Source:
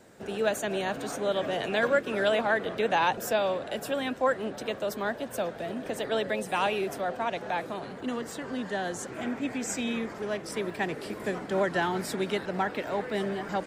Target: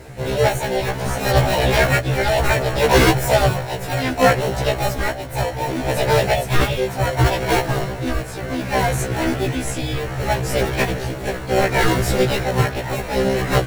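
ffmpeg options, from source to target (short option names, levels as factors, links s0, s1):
-filter_complex "[0:a]equalizer=f=980:t=o:w=0.74:g=11,asplit=2[s0][s1];[s1]acrusher=samples=36:mix=1:aa=0.000001,volume=0.668[s2];[s0][s2]amix=inputs=2:normalize=0,asuperstop=centerf=920:order=8:qfactor=2.6,apsyclip=3.35,tremolo=f=0.66:d=0.54,lowshelf=f=140:t=q:w=3:g=10,acontrast=71,asplit=2[s3][s4];[s4]asetrate=58866,aresample=44100,atempo=0.749154,volume=0.891[s5];[s3][s5]amix=inputs=2:normalize=0,areverse,acompressor=mode=upward:threshold=0.0447:ratio=2.5,areverse,afftfilt=real='re*1.73*eq(mod(b,3),0)':imag='im*1.73*eq(mod(b,3),0)':win_size=2048:overlap=0.75,volume=0.473"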